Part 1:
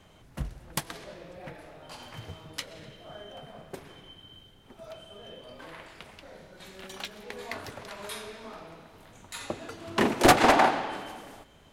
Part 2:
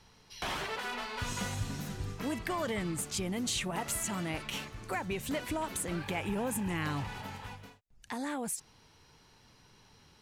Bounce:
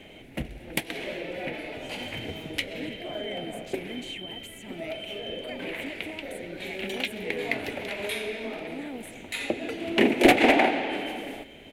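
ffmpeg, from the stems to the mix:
-filter_complex "[0:a]bandreject=f=50:t=h:w=6,bandreject=f=100:t=h:w=6,acompressor=threshold=-41dB:ratio=1.5,volume=3dB[a];[1:a]alimiter=level_in=6.5dB:limit=-24dB:level=0:latency=1:release=263,volume=-6.5dB,adelay=550,volume=-8dB[b];[a][b]amix=inputs=2:normalize=0,firequalizer=gain_entry='entry(150,0);entry(260,11);entry(750,5);entry(1100,-8);entry(2200,14);entry(5100,-4);entry(11000,2)':delay=0.05:min_phase=1"

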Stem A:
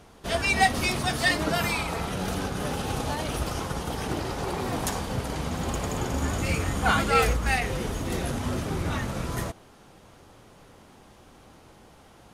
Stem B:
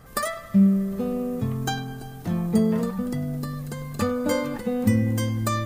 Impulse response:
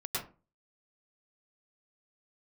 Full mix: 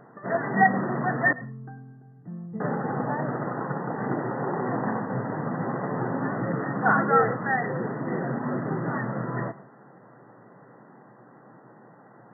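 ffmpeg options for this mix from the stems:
-filter_complex "[0:a]volume=2dB,asplit=3[a][b][c];[a]atrim=end=1.33,asetpts=PTS-STARTPTS,afade=t=out:st=1.326:d=0.004:c=hsin[d];[b]atrim=start=1.33:end=2.6,asetpts=PTS-STARTPTS,volume=0[e];[c]atrim=start=2.6,asetpts=PTS-STARTPTS,afade=t=in:d=0.004:c=hsin[f];[d][e][f]concat=n=3:v=0:a=1,asplit=2[g][h];[h]volume=-23dB[i];[1:a]lowshelf=f=330:g=11,flanger=delay=6:depth=5.1:regen=-62:speed=0.41:shape=triangular,volume=-16.5dB[j];[2:a]atrim=start_sample=2205[k];[i][k]afir=irnorm=-1:irlink=0[l];[g][j][l]amix=inputs=3:normalize=0,aeval=exprs='val(0)+0.00112*(sin(2*PI*60*n/s)+sin(2*PI*2*60*n/s)/2+sin(2*PI*3*60*n/s)/3+sin(2*PI*4*60*n/s)/4+sin(2*PI*5*60*n/s)/5)':c=same,afftfilt=real='re*between(b*sr/4096,110,2000)':imag='im*between(b*sr/4096,110,2000)':win_size=4096:overlap=0.75"

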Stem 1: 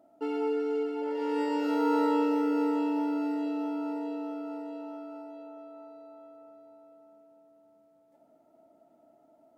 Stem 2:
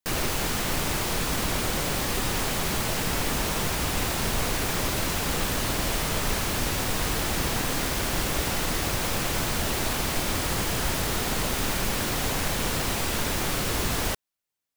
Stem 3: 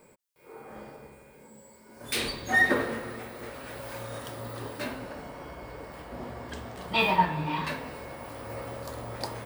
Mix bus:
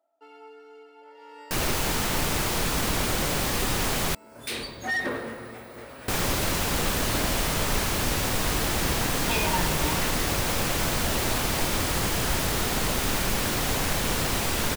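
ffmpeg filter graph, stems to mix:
-filter_complex "[0:a]highpass=770,volume=-8.5dB[a];[1:a]adelay=1450,volume=1dB,asplit=3[b][c][d];[b]atrim=end=4.15,asetpts=PTS-STARTPTS,afade=t=out:st=4.146:d=0.004:c=hsin[e];[c]atrim=start=4.15:end=6.08,asetpts=PTS-STARTPTS,volume=0[f];[d]atrim=start=6.08,asetpts=PTS-STARTPTS,afade=t=in:d=0.004:c=hsin[g];[e][f][g]concat=n=3:v=0:a=1[h];[2:a]asoftclip=type=tanh:threshold=-21.5dB,adelay=2350,volume=-1.5dB[i];[a][h][i]amix=inputs=3:normalize=0"

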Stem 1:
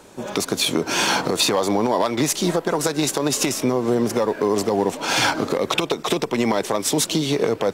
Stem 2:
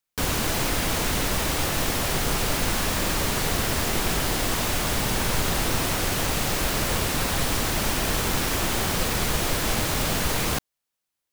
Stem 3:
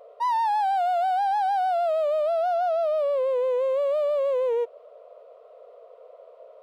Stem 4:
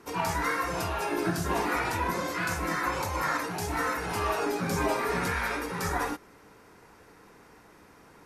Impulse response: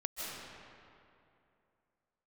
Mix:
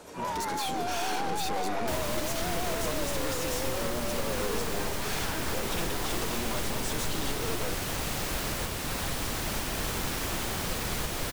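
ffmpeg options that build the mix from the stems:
-filter_complex "[0:a]bandreject=f=50:t=h:w=6,bandreject=f=100:t=h:w=6,bandreject=f=150:t=h:w=6,bandreject=f=200:t=h:w=6,bandreject=f=250:t=h:w=6,bandreject=f=300:t=h:w=6,bandreject=f=350:t=h:w=6,bandreject=f=400:t=h:w=6,aeval=exprs='(tanh(35.5*val(0)+0.25)-tanh(0.25))/35.5':c=same,volume=-5dB,asplit=2[a][b];[b]volume=-7dB[c];[1:a]adelay=1700,volume=-7dB[d];[2:a]volume=-11.5dB[e];[3:a]volume=-12dB[f];[4:a]atrim=start_sample=2205[g];[c][g]afir=irnorm=-1:irlink=0[h];[a][d][e][f][h]amix=inputs=5:normalize=0,alimiter=limit=-19.5dB:level=0:latency=1:release=281"

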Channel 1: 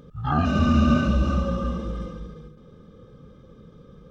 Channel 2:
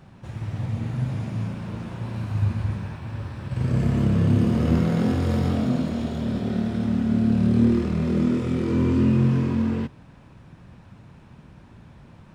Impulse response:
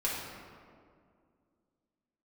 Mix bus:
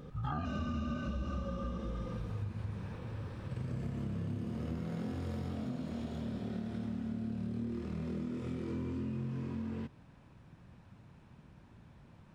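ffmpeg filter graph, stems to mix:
-filter_complex "[0:a]volume=-2dB[a];[1:a]volume=-10dB[b];[a][b]amix=inputs=2:normalize=0,acompressor=threshold=-35dB:ratio=6"

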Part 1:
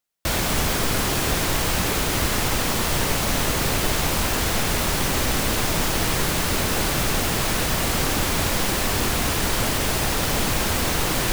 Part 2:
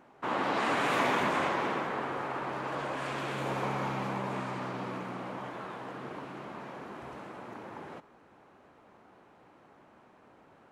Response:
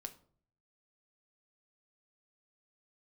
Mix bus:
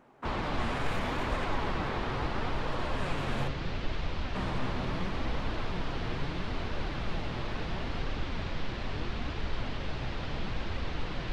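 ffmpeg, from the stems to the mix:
-filter_complex "[0:a]lowpass=f=4.1k:w=0.5412,lowpass=f=4.1k:w=1.3066,volume=-11dB[a];[1:a]alimiter=level_in=1.5dB:limit=-24dB:level=0:latency=1:release=38,volume=-1.5dB,volume=-0.5dB,asplit=3[b][c][d];[b]atrim=end=3.48,asetpts=PTS-STARTPTS,afade=t=out:st=3.476:d=0.004:c=hsin[e];[c]atrim=start=3.48:end=4.35,asetpts=PTS-STARTPTS,volume=0[f];[d]atrim=start=4.35,asetpts=PTS-STARTPTS,afade=t=in:d=0.004:c=hsin[g];[e][f][g]concat=n=3:v=0:a=1,asplit=2[h][i];[i]volume=-4.5dB[j];[2:a]atrim=start_sample=2205[k];[j][k]afir=irnorm=-1:irlink=0[l];[a][h][l]amix=inputs=3:normalize=0,lowshelf=f=160:g=8.5,flanger=delay=1.5:depth=7.4:regen=69:speed=0.74:shape=triangular"

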